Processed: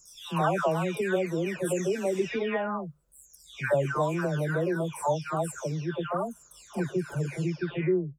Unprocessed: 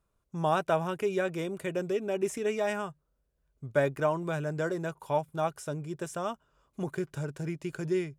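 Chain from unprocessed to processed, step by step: delay that grows with frequency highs early, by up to 629 ms; in parallel at -1 dB: peak limiter -26 dBFS, peak gain reduction 9.5 dB

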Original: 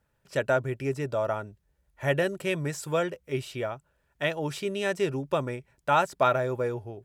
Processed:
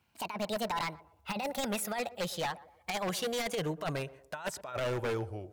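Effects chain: gliding tape speed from 166% -> 89%; high-pass 50 Hz 24 dB/octave; peaking EQ 260 Hz -6.5 dB 2.3 oct; compressor with a negative ratio -30 dBFS, ratio -0.5; wavefolder -27 dBFS; on a send: band-passed feedback delay 120 ms, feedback 42%, band-pass 500 Hz, level -16 dB

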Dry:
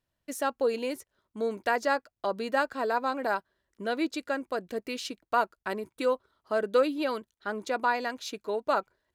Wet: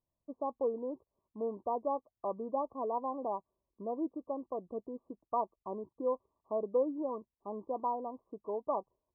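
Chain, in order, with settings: brick-wall FIR low-pass 1.2 kHz; trim -6 dB

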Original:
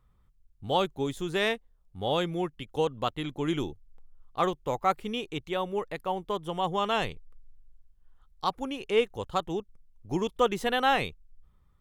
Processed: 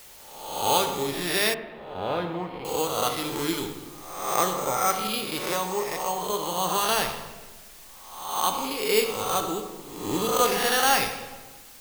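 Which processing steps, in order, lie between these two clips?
reverse spectral sustain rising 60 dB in 0.91 s; sample-and-hold 6×; tilt EQ +1.5 dB/octave; reverberation RT60 1.3 s, pre-delay 4 ms, DRR 4 dB; word length cut 8-bit, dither triangular; 1.54–2.65 s: distance through air 480 m

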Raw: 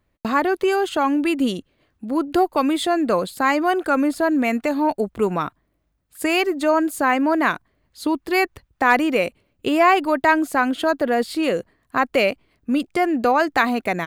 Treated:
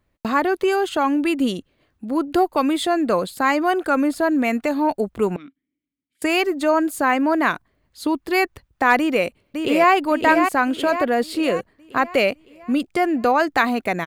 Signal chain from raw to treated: 5.36–6.22 s: vowel filter i; 8.98–9.92 s: echo throw 560 ms, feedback 50%, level -5 dB

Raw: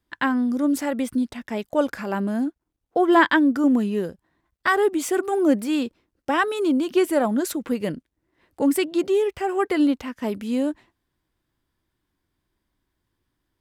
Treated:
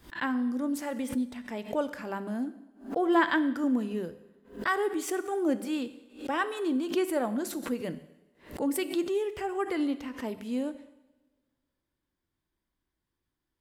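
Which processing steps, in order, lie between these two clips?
hum notches 50/100/150/200 Hz; two-slope reverb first 0.94 s, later 2.8 s, from -28 dB, DRR 11 dB; swell ahead of each attack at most 150 dB/s; trim -8.5 dB

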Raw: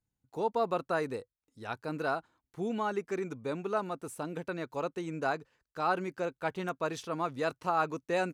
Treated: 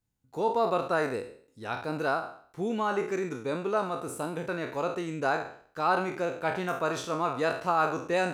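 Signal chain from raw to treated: spectral sustain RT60 0.53 s; trim +2.5 dB

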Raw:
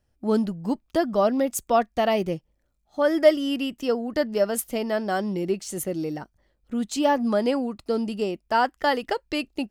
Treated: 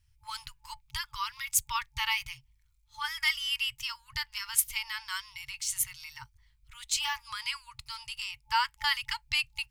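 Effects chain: high-order bell 1.2 kHz -9 dB 1.3 oct; small resonant body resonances 480/2200 Hz, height 8 dB; FFT band-reject 130–870 Hz; trim +4 dB

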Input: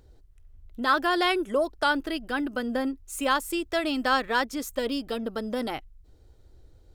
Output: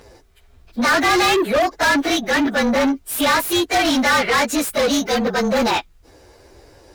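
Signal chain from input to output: frequency axis rescaled in octaves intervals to 108%; overdrive pedal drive 29 dB, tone 5.3 kHz, clips at -13.5 dBFS; trim +4 dB

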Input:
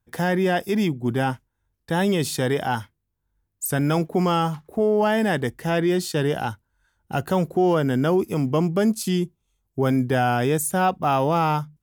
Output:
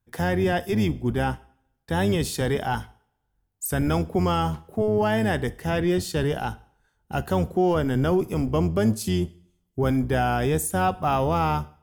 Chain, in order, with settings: octave divider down 1 oct, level -4 dB; reverberation RT60 0.65 s, pre-delay 3 ms, DRR 15.5 dB; trim -2.5 dB

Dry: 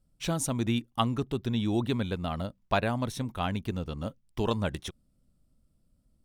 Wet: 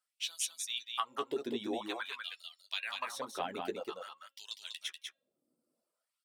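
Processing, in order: high-pass 180 Hz 6 dB/octave; de-hum 272.9 Hz, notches 15; LFO high-pass sine 0.5 Hz 330–4800 Hz; compression 5:1, threshold -29 dBFS, peak gain reduction 10.5 dB; flange 0.48 Hz, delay 7.7 ms, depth 7.3 ms, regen -34%; reverb removal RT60 0.84 s; delay 195 ms -4.5 dB; trim +1 dB

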